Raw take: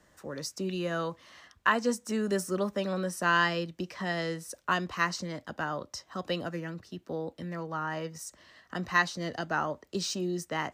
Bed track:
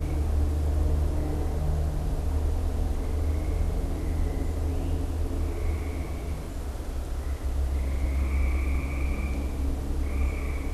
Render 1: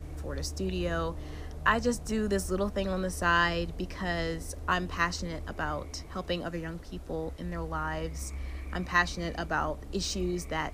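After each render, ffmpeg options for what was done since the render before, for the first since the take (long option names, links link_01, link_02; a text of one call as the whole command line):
ffmpeg -i in.wav -i bed.wav -filter_complex "[1:a]volume=-12.5dB[link_01];[0:a][link_01]amix=inputs=2:normalize=0" out.wav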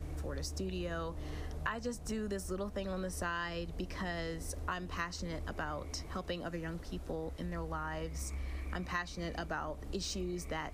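ffmpeg -i in.wav -af "acompressor=threshold=-36dB:ratio=4" out.wav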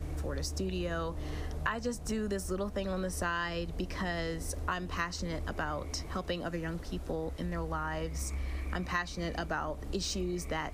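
ffmpeg -i in.wav -af "volume=4dB" out.wav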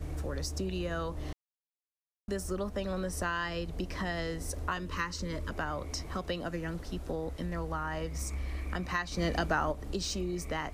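ffmpeg -i in.wav -filter_complex "[0:a]asettb=1/sr,asplit=3[link_01][link_02][link_03];[link_01]atrim=end=4.774[link_04];[link_02]atrim=start=4.77:end=5.51,asetpts=PTS-STARTPTS,afade=type=in:duration=0.004:curve=qsin,afade=type=out:start_time=0.736:duration=0.004:curve=qsin,asuperstop=centerf=740:order=20:qfactor=3.8[link_05];[link_03]atrim=start=5.506[link_06];[link_04][link_05]acrossfade=duration=0.004:curve1=hsin:curve2=qsin[link_07];[link_07][link_06]acrossfade=duration=0.004:curve1=qsin:curve2=hsin,asplit=5[link_08][link_09][link_10][link_11][link_12];[link_08]atrim=end=1.33,asetpts=PTS-STARTPTS,afade=type=out:start_time=1.326:duration=0.004:curve=hsin[link_13];[link_09]atrim=start=1.33:end=2.28,asetpts=PTS-STARTPTS,volume=0[link_14];[link_10]atrim=start=2.28:end=9.122,asetpts=PTS-STARTPTS,afade=type=in:duration=0.004:curve=hsin[link_15];[link_11]atrim=start=9.118:end=9.722,asetpts=PTS-STARTPTS,volume=5dB[link_16];[link_12]atrim=start=9.718[link_17];[link_13][link_14][link_15]concat=n=3:v=0:a=1[link_18];[link_18][link_16]acrossfade=duration=0.004:curve1=hsin:curve2=hsin[link_19];[link_19][link_17]acrossfade=duration=0.004:curve1=hsin:curve2=hsin" out.wav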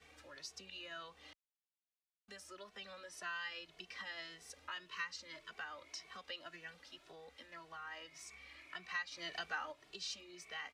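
ffmpeg -i in.wav -filter_complex "[0:a]bandpass=frequency=2900:width_type=q:width=1.2:csg=0,asplit=2[link_01][link_02];[link_02]adelay=2.2,afreqshift=1.8[link_03];[link_01][link_03]amix=inputs=2:normalize=1" out.wav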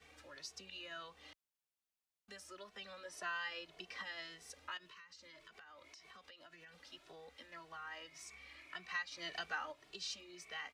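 ffmpeg -i in.wav -filter_complex "[0:a]asettb=1/sr,asplit=3[link_01][link_02][link_03];[link_01]atrim=end=3.054[link_04];[link_02]atrim=start=3.05:end=4.03,asetpts=PTS-STARTPTS,afade=type=in:duration=0.004:curve=qsin,afade=type=out:start_time=0.976:duration=0.004:curve=qsin,equalizer=frequency=600:width=0.64:gain=5[link_05];[link_03]atrim=start=4.026[link_06];[link_04][link_05]acrossfade=duration=0.004:curve1=hsin:curve2=qsin[link_07];[link_07][link_06]acrossfade=duration=0.004:curve1=qsin:curve2=hsin,asettb=1/sr,asplit=3[link_08][link_09][link_10];[link_08]atrim=end=4.774[link_11];[link_09]atrim=start=4.77:end=6.77,asetpts=PTS-STARTPTS,afade=type=in:duration=0.004:curve=qsin,afade=type=out:start_time=1.996:duration=0.004:curve=qsin,acompressor=threshold=-54dB:ratio=12:attack=3.2:release=140:knee=1:detection=peak[link_12];[link_10]atrim=start=6.766[link_13];[link_11][link_12]acrossfade=duration=0.004:curve1=hsin:curve2=qsin[link_14];[link_14][link_13]acrossfade=duration=0.004:curve1=qsin:curve2=hsin" out.wav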